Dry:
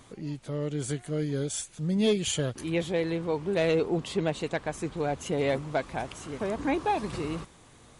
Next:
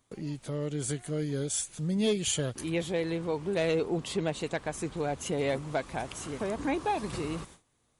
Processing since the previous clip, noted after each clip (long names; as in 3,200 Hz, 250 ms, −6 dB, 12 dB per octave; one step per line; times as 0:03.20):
in parallel at 0 dB: downward compressor, threshold −37 dBFS, peak gain reduction 15.5 dB
on the sum: noise gate with hold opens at −36 dBFS
high-shelf EQ 7,900 Hz +8 dB
level −4.5 dB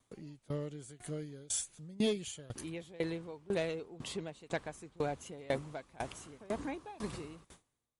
tremolo with a ramp in dB decaying 2 Hz, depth 23 dB
level −1 dB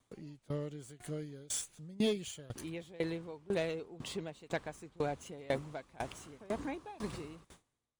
running median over 3 samples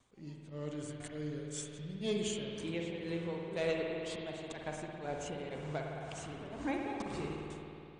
Chebyshev low-pass filter 9,100 Hz, order 6
volume swells 199 ms
spring reverb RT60 2.8 s, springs 53 ms, chirp 50 ms, DRR 0 dB
level +4.5 dB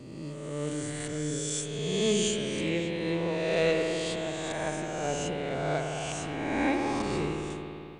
peak hold with a rise ahead of every peak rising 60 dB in 1.69 s
level +6 dB